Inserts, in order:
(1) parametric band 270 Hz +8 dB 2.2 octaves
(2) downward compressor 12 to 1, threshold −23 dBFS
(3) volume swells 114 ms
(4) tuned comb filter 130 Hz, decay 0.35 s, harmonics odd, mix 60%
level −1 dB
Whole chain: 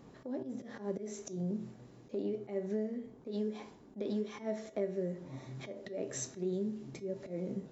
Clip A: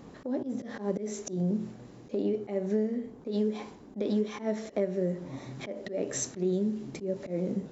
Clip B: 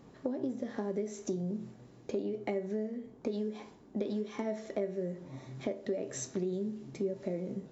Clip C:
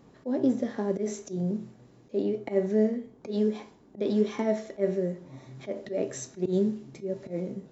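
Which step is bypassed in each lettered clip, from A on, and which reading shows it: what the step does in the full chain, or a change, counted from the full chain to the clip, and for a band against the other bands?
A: 4, change in integrated loudness +7.0 LU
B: 3, 1 kHz band +2.5 dB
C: 2, average gain reduction 5.5 dB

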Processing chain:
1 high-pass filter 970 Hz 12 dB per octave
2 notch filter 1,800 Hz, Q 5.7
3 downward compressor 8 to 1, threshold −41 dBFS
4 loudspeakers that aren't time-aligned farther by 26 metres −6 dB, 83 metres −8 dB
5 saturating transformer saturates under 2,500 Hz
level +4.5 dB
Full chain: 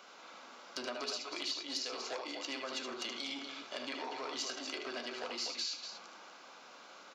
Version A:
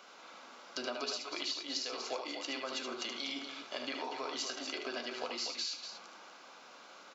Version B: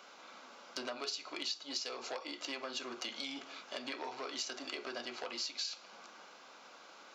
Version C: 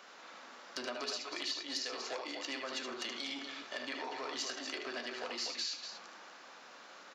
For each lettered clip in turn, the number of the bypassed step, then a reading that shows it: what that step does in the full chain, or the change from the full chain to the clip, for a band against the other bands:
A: 5, change in integrated loudness +1.0 LU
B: 4, change in crest factor +1.5 dB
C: 2, 2 kHz band +2.0 dB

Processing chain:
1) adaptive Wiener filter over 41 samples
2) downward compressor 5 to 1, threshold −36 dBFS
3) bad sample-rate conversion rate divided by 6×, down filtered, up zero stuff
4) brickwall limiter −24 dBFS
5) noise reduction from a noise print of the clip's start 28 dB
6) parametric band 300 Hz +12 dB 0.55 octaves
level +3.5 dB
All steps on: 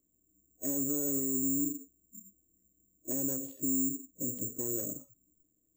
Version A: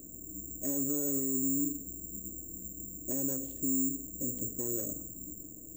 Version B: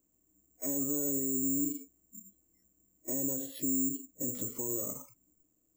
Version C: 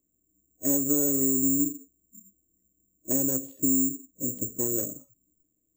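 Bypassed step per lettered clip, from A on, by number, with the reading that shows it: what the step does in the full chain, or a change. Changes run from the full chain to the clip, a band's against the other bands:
5, change in momentary loudness spread +2 LU
1, change in momentary loudness spread +5 LU
4, average gain reduction 2.5 dB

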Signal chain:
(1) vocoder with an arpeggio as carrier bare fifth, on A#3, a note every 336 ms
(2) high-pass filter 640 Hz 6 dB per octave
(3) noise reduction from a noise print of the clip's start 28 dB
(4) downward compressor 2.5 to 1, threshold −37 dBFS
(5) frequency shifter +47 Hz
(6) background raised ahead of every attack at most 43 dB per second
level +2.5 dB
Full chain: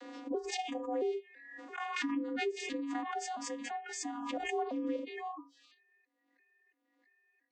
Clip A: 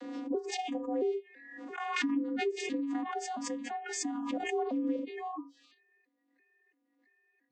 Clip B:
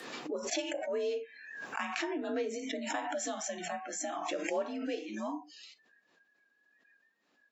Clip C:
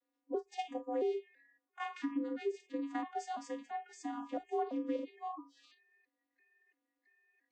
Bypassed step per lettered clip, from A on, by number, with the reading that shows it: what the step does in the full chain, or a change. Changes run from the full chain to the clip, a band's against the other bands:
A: 2, 250 Hz band +3.0 dB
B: 1, 8 kHz band +4.0 dB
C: 6, 8 kHz band −11.5 dB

